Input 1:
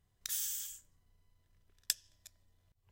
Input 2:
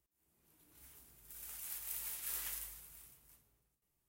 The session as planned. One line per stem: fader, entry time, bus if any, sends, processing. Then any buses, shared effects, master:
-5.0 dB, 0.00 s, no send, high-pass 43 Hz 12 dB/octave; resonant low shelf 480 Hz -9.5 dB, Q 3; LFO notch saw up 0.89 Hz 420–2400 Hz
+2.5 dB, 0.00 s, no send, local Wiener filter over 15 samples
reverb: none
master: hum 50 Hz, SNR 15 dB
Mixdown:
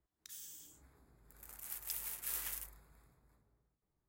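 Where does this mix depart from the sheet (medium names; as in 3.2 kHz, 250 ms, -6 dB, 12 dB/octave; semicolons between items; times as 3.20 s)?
stem 1 -5.0 dB -> -14.0 dB; master: missing hum 50 Hz, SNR 15 dB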